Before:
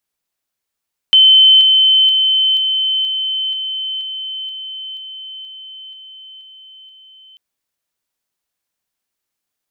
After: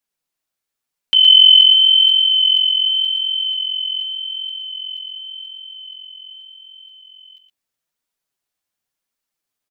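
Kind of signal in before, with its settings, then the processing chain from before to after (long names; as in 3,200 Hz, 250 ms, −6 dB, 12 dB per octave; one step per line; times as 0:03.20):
level staircase 3,070 Hz −4.5 dBFS, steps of −3 dB, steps 13, 0.48 s 0.00 s
flanger 0.87 Hz, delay 3.3 ms, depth 8.2 ms, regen +2%
on a send: single-tap delay 117 ms −6.5 dB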